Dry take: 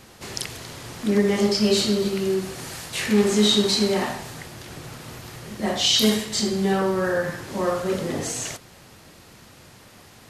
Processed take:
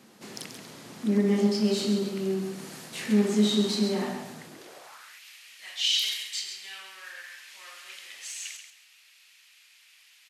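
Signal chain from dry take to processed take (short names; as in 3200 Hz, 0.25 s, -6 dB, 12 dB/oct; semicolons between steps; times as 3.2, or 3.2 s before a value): one diode to ground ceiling -11.5 dBFS; feedback echo 0.135 s, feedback 23%, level -8 dB; high-pass sweep 210 Hz -> 2500 Hz, 4.47–5.22; gain -9 dB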